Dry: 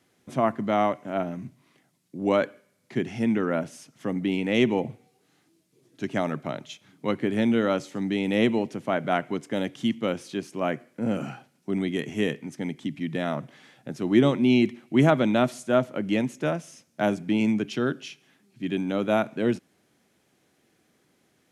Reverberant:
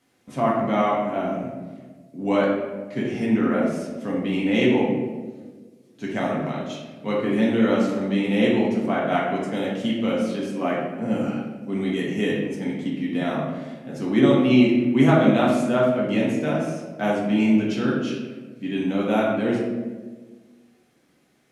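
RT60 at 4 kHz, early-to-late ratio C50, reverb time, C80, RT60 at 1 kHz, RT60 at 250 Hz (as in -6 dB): 0.75 s, 1.5 dB, 1.4 s, 4.0 dB, 1.2 s, 1.8 s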